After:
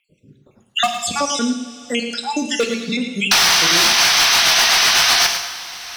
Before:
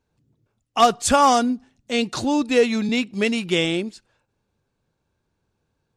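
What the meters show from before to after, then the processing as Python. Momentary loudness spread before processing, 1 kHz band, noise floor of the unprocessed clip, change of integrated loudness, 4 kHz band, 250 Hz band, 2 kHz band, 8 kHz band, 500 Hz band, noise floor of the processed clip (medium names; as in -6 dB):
10 LU, +0.5 dB, -75 dBFS, +6.0 dB, +15.0 dB, -1.5 dB, +12.0 dB, +14.0 dB, -3.0 dB, -58 dBFS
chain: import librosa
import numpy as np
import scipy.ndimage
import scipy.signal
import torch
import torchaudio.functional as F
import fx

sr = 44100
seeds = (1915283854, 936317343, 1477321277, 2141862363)

p1 = fx.spec_dropout(x, sr, seeds[0], share_pct=70)
p2 = fx.highpass(p1, sr, hz=160.0, slope=6)
p3 = fx.high_shelf(p2, sr, hz=10000.0, db=-9.5)
p4 = fx.level_steps(p3, sr, step_db=19)
p5 = p3 + (p4 * librosa.db_to_amplitude(-2.5))
p6 = fx.spec_paint(p5, sr, seeds[1], shape='noise', start_s=3.31, length_s=1.96, low_hz=640.0, high_hz=6300.0, level_db=-10.0)
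p7 = fx.rotary_switch(p6, sr, hz=1.1, then_hz=8.0, switch_at_s=3.44)
p8 = np.clip(10.0 ** (12.0 / 20.0) * p7, -1.0, 1.0) / 10.0 ** (12.0 / 20.0)
p9 = p8 + fx.echo_single(p8, sr, ms=108, db=-10.5, dry=0)
p10 = fx.rev_double_slope(p9, sr, seeds[2], early_s=0.82, late_s=2.7, knee_db=-18, drr_db=5.0)
y = fx.band_squash(p10, sr, depth_pct=70)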